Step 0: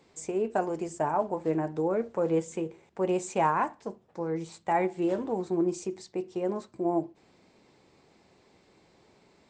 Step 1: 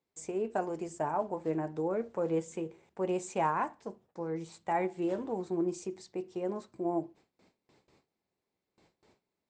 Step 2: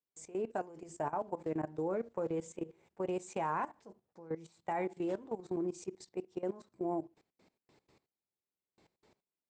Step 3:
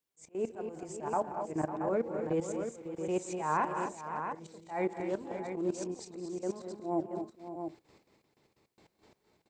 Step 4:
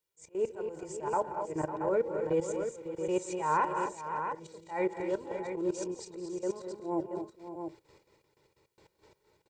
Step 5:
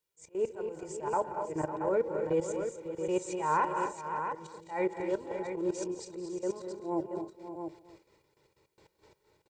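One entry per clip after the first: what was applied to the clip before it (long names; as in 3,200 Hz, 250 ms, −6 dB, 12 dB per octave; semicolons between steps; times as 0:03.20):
noise gate with hold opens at −50 dBFS; level −4.5 dB
output level in coarse steps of 17 dB
volume swells 168 ms; multi-tap delay 172/210/220/238/551/678 ms −15.5/−12/−19/−9/−11.5/−7.5 dB; level +5.5 dB
comb filter 2.1 ms, depth 63%
slap from a distant wall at 47 metres, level −17 dB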